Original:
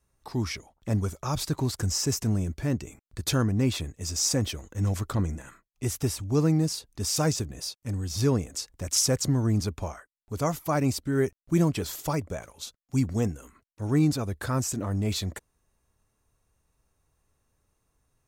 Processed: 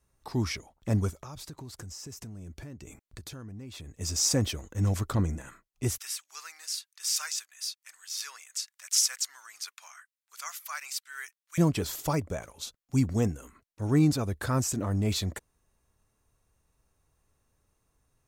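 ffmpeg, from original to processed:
ffmpeg -i in.wav -filter_complex "[0:a]asplit=3[link_01][link_02][link_03];[link_01]afade=type=out:start_time=1.1:duration=0.02[link_04];[link_02]acompressor=threshold=-40dB:ratio=8:attack=3.2:release=140:knee=1:detection=peak,afade=type=in:start_time=1.1:duration=0.02,afade=type=out:start_time=3.93:duration=0.02[link_05];[link_03]afade=type=in:start_time=3.93:duration=0.02[link_06];[link_04][link_05][link_06]amix=inputs=3:normalize=0,asettb=1/sr,asplit=3[link_07][link_08][link_09];[link_07]atrim=end=5.984[link_10];[link_08]atrim=start=5.98:end=11.58,asetpts=PTS-STARTPTS,afade=type=in:duration=0.004:curve=qsin,afade=type=out:start_time=5.596:duration=0.004:curve=qsin,highpass=frequency=1400:width=0.5412,highpass=frequency=1400:width=1.3066[link_11];[link_09]atrim=start=11.576[link_12];[link_10][link_11]acrossfade=duration=0.004:curve1=hsin:curve2=qsin[link_13];[link_13][link_12]acrossfade=duration=0.004:curve1=qsin:curve2=hsin" out.wav

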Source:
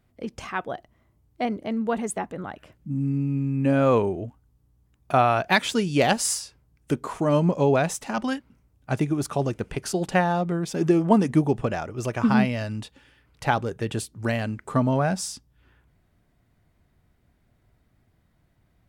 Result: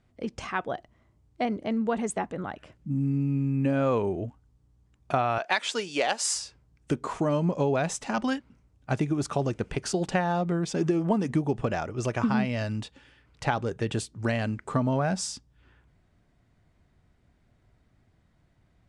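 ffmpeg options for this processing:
ffmpeg -i in.wav -filter_complex "[0:a]asettb=1/sr,asplit=3[link_01][link_02][link_03];[link_01]atrim=end=5.384[link_04];[link_02]atrim=start=5.38:end=6.36,asetpts=PTS-STARTPTS,afade=type=in:duration=0.004:curve=qsin,afade=type=out:start_time=0.976:duration=0.004:curve=qsin,highpass=500[link_05];[link_03]atrim=start=6.356[link_06];[link_04][link_05]acrossfade=duration=0.004:curve1=hsin:curve2=qsin[link_07];[link_07][link_06]acrossfade=duration=0.004:curve1=qsin:curve2=hsin,lowpass=frequency=8700:width=0.5412,lowpass=frequency=8700:width=1.3066,acompressor=threshold=-22dB:ratio=4" out.wav

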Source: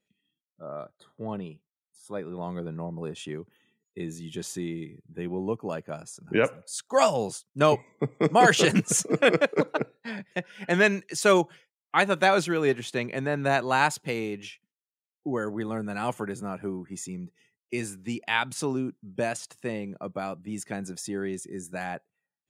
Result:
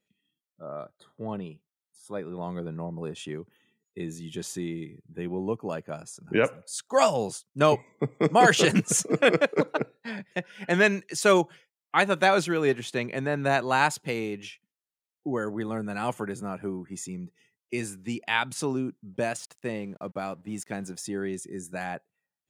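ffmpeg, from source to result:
ffmpeg -i in.wav -filter_complex "[0:a]asplit=3[link_01][link_02][link_03];[link_01]afade=type=out:start_time=19.13:duration=0.02[link_04];[link_02]aeval=exprs='sgn(val(0))*max(abs(val(0))-0.00141,0)':channel_layout=same,afade=type=in:start_time=19.13:duration=0.02,afade=type=out:start_time=21.04:duration=0.02[link_05];[link_03]afade=type=in:start_time=21.04:duration=0.02[link_06];[link_04][link_05][link_06]amix=inputs=3:normalize=0" out.wav

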